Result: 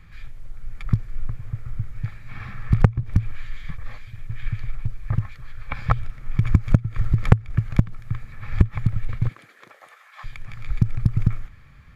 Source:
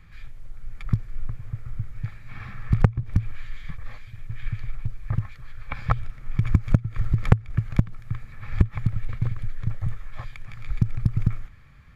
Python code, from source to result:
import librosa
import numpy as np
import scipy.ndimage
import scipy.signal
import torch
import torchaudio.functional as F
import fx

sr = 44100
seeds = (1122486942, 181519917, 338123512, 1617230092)

y = fx.highpass(x, sr, hz=fx.line((9.28, 210.0), (10.23, 890.0)), slope=24, at=(9.28, 10.23), fade=0.02)
y = y * 10.0 ** (2.5 / 20.0)